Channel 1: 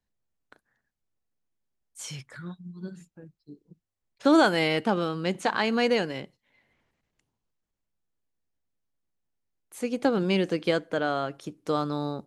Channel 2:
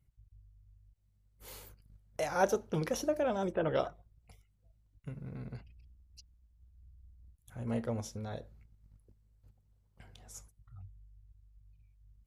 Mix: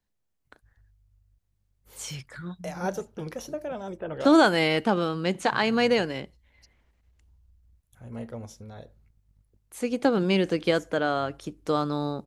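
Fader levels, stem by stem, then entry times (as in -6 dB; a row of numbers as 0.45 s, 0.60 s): +1.5 dB, -2.5 dB; 0.00 s, 0.45 s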